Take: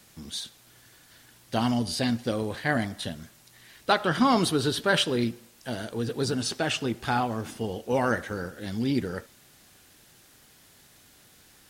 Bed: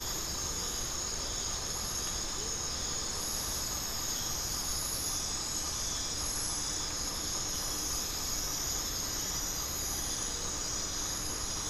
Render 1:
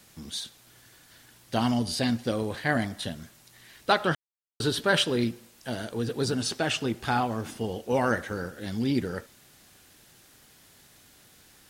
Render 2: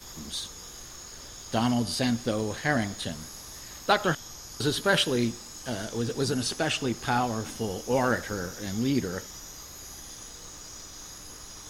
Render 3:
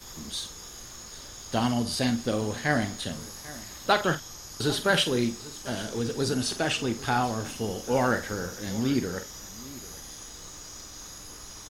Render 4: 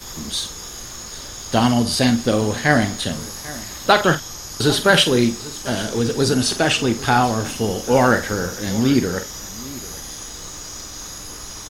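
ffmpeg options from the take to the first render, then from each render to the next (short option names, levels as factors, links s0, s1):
-filter_complex "[0:a]asplit=3[s0][s1][s2];[s0]atrim=end=4.15,asetpts=PTS-STARTPTS,afade=t=out:st=4.146:d=0.004:c=hsin[s3];[s1]atrim=start=4.15:end=4.6,asetpts=PTS-STARTPTS,volume=0[s4];[s2]atrim=start=4.6,asetpts=PTS-STARTPTS,afade=t=in:d=0.004:c=hsin[s5];[s3][s4][s5]concat=n=3:v=0:a=1"
-filter_complex "[1:a]volume=0.376[s0];[0:a][s0]amix=inputs=2:normalize=0"
-filter_complex "[0:a]asplit=2[s0][s1];[s1]adelay=47,volume=0.282[s2];[s0][s2]amix=inputs=2:normalize=0,aecho=1:1:794:0.119"
-af "volume=2.99,alimiter=limit=0.891:level=0:latency=1"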